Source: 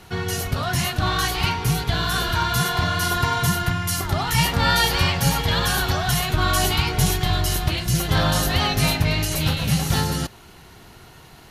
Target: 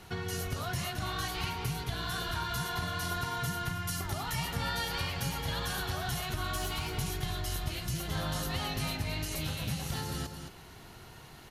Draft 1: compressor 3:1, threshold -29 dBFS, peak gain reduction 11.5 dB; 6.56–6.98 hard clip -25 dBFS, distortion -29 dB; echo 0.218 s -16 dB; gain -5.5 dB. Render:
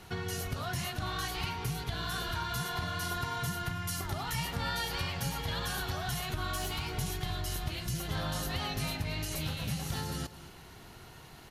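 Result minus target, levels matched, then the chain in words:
echo-to-direct -8 dB
compressor 3:1, threshold -29 dBFS, peak gain reduction 11.5 dB; 6.56–6.98 hard clip -25 dBFS, distortion -29 dB; echo 0.218 s -8 dB; gain -5.5 dB

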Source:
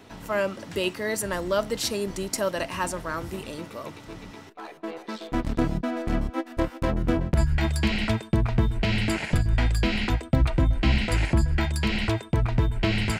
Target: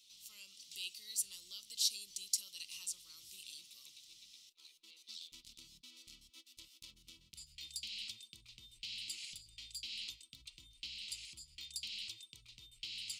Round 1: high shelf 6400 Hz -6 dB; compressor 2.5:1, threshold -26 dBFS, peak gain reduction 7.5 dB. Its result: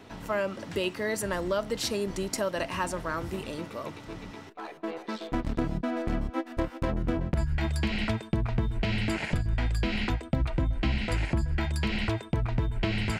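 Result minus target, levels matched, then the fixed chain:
2000 Hz band +8.0 dB
high shelf 6400 Hz -6 dB; compressor 2.5:1, threshold -26 dBFS, peak gain reduction 7.5 dB; inverse Chebyshev high-pass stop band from 1800 Hz, stop band 40 dB

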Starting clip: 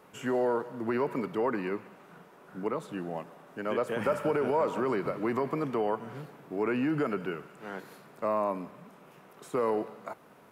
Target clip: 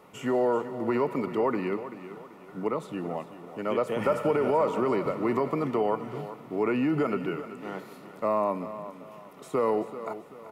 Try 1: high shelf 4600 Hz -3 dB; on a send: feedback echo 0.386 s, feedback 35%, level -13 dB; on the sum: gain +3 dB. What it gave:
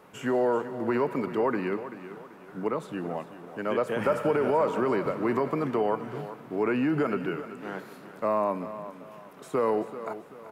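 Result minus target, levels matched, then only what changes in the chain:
2000 Hz band +2.5 dB
add first: Butterworth band-stop 1600 Hz, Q 6.4

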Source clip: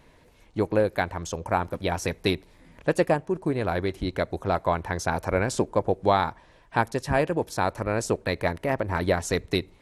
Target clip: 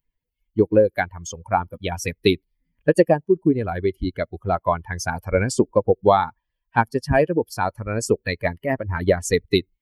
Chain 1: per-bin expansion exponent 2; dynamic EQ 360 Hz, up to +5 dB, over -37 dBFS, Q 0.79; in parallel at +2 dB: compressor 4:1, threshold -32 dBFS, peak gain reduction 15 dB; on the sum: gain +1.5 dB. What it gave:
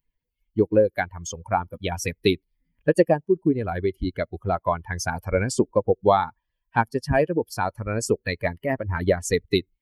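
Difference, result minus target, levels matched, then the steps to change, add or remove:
compressor: peak gain reduction +7.5 dB
change: compressor 4:1, threshold -22 dBFS, peak gain reduction 7.5 dB

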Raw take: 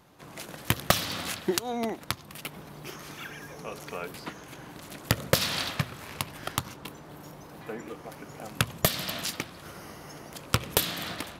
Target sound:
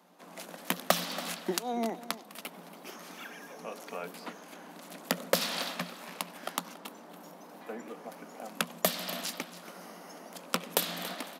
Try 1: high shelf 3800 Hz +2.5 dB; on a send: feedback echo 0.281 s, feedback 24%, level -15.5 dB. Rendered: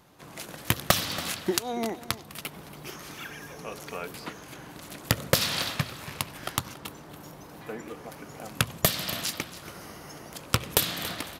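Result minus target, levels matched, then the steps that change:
125 Hz band +8.0 dB
add first: rippled Chebyshev high-pass 170 Hz, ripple 6 dB

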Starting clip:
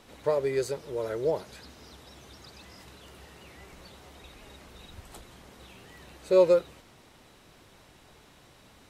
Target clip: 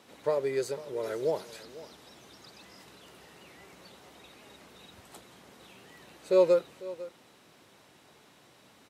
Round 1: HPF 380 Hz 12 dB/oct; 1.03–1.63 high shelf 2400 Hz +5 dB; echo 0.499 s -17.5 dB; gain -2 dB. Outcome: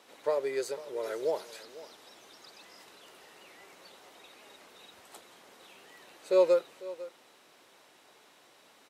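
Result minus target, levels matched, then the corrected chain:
125 Hz band -11.5 dB
HPF 150 Hz 12 dB/oct; 1.03–1.63 high shelf 2400 Hz +5 dB; echo 0.499 s -17.5 dB; gain -2 dB

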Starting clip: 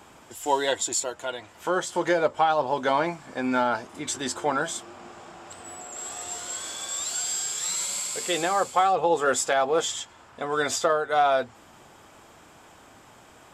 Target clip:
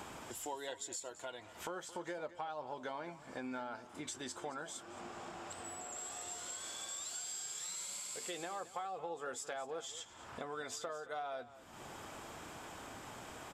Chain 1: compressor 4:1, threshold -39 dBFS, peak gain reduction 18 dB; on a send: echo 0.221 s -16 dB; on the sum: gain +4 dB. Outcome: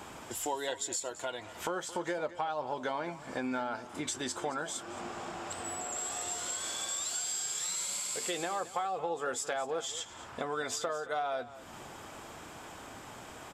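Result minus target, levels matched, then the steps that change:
compressor: peak gain reduction -8 dB
change: compressor 4:1, threshold -50 dBFS, peak gain reduction 26.5 dB

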